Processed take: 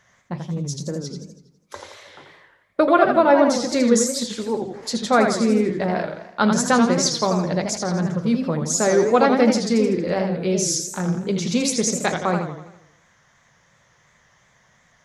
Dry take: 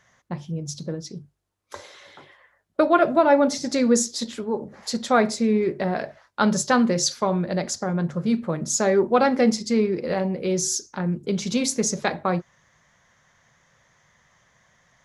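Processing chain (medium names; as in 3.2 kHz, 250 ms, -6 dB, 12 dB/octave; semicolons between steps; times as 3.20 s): modulated delay 82 ms, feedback 52%, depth 187 cents, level -6 dB; trim +1.5 dB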